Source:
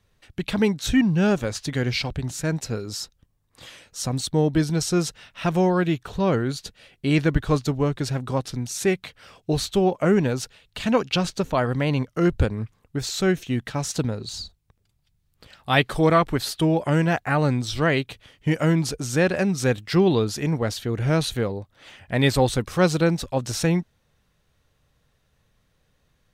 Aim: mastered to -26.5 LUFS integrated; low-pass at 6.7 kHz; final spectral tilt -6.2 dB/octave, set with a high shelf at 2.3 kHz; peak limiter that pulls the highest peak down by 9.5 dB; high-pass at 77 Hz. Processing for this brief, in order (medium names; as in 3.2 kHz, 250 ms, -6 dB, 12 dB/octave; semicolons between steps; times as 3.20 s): high-pass 77 Hz; low-pass 6.7 kHz; treble shelf 2.3 kHz -5 dB; trim -1 dB; peak limiter -15.5 dBFS